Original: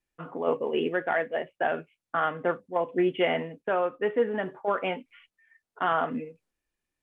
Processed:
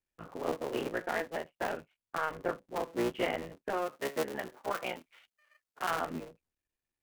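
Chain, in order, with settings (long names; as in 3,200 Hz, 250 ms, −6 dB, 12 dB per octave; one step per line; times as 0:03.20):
sub-harmonics by changed cycles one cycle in 3, muted
0:03.77–0:05.90: spectral tilt +1.5 dB per octave
level −5.5 dB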